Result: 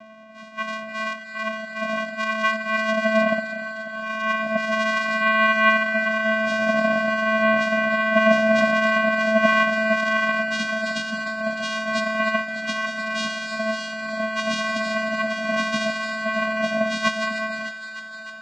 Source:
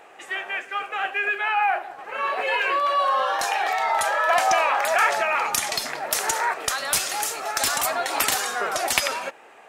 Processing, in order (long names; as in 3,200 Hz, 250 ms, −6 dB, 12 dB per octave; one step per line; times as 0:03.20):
notch filter 550 Hz, Q 12
time stretch by phase vocoder 1.9×
channel vocoder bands 4, square 219 Hz
high-frequency loss of the air 77 metres
delay with a high-pass on its return 304 ms, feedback 77%, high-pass 1,400 Hz, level −10 dB
level +5 dB